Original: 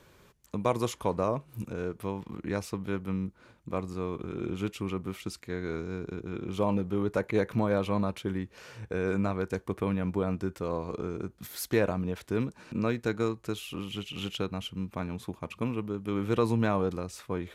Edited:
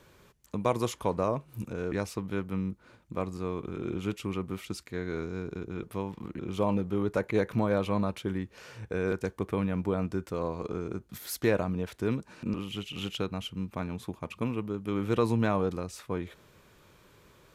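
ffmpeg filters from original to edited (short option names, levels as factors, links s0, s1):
-filter_complex "[0:a]asplit=6[s0][s1][s2][s3][s4][s5];[s0]atrim=end=1.922[s6];[s1]atrim=start=2.478:end=6.392[s7];[s2]atrim=start=1.918:end=2.482[s8];[s3]atrim=start=6.388:end=9.122[s9];[s4]atrim=start=9.408:end=12.832[s10];[s5]atrim=start=13.738[s11];[s6][s7]acrossfade=d=0.004:c1=hsin:c2=hsin[s12];[s12][s8]acrossfade=d=0.004:c1=hsin:c2=hsin[s13];[s13][s9]acrossfade=d=0.004:c1=hsin:c2=hsin[s14];[s14][s10]acrossfade=d=0.004:c1=hsin:c2=hsin[s15];[s15][s11]acrossfade=d=0.004:c1=hsin:c2=hsin"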